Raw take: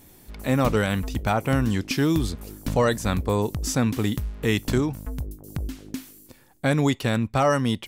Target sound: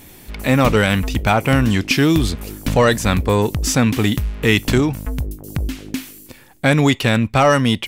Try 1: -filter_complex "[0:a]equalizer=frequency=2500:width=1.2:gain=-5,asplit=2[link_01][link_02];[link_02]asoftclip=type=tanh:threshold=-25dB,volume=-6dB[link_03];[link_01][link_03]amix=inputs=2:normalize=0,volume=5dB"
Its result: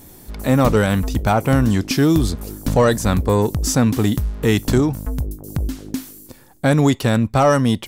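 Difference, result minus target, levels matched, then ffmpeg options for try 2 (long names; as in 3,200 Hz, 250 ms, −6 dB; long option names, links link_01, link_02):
2,000 Hz band −5.5 dB
-filter_complex "[0:a]equalizer=frequency=2500:width=1.2:gain=6,asplit=2[link_01][link_02];[link_02]asoftclip=type=tanh:threshold=-25dB,volume=-6dB[link_03];[link_01][link_03]amix=inputs=2:normalize=0,volume=5dB"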